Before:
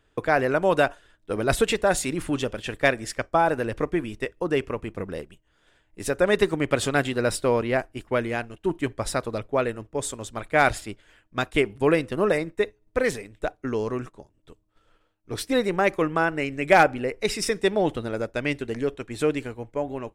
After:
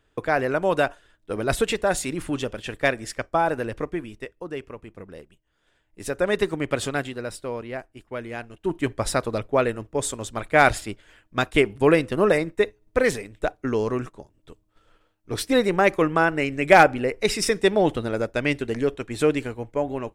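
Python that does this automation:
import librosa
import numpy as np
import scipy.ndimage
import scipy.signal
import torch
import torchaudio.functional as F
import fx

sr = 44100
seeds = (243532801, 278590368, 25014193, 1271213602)

y = fx.gain(x, sr, db=fx.line((3.62, -1.0), (4.54, -9.0), (5.06, -9.0), (6.2, -2.0), (6.85, -2.0), (7.29, -9.0), (8.12, -9.0), (8.91, 3.0)))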